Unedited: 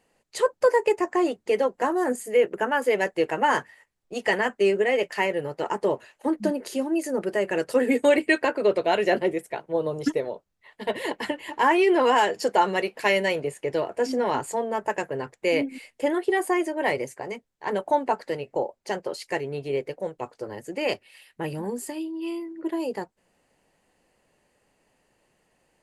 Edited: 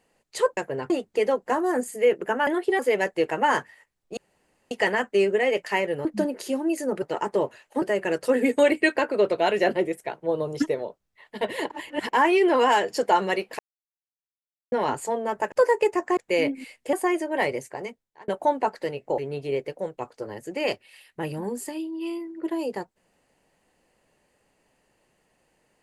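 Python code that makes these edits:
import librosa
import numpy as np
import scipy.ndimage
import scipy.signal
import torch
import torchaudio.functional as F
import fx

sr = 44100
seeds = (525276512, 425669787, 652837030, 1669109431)

y = fx.edit(x, sr, fx.swap(start_s=0.57, length_s=0.65, other_s=14.98, other_length_s=0.33),
    fx.insert_room_tone(at_s=4.17, length_s=0.54),
    fx.move(start_s=5.51, length_s=0.8, to_s=7.28),
    fx.reverse_span(start_s=11.16, length_s=0.43),
    fx.silence(start_s=13.05, length_s=1.13),
    fx.move(start_s=16.07, length_s=0.32, to_s=2.79),
    fx.fade_out_span(start_s=17.28, length_s=0.46),
    fx.cut(start_s=18.64, length_s=0.75), tone=tone)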